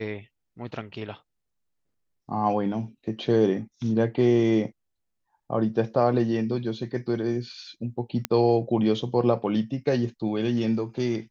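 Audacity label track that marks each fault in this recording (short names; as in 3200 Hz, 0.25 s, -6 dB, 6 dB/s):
8.250000	8.250000	pop -9 dBFS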